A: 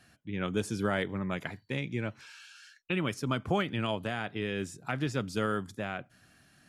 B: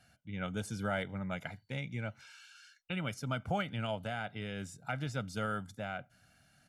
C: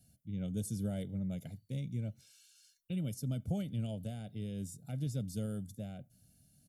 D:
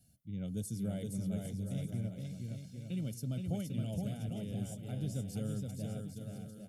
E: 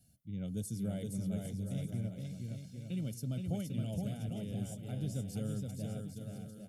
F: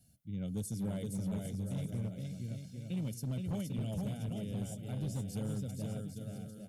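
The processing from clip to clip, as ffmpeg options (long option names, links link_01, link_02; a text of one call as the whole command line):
ffmpeg -i in.wav -af "aecho=1:1:1.4:0.64,volume=-6dB" out.wav
ffmpeg -i in.wav -af "firequalizer=gain_entry='entry(190,0);entry(340,-4);entry(570,-9);entry(1000,-30);entry(3500,-10);entry(11000,6)':delay=0.05:min_phase=1,volume=2.5dB" out.wav
ffmpeg -i in.wav -af "aecho=1:1:470|799|1029|1191|1303:0.631|0.398|0.251|0.158|0.1,volume=-1.5dB" out.wav
ffmpeg -i in.wav -af anull out.wav
ffmpeg -i in.wav -af "asoftclip=type=hard:threshold=-32.5dB,volume=1dB" out.wav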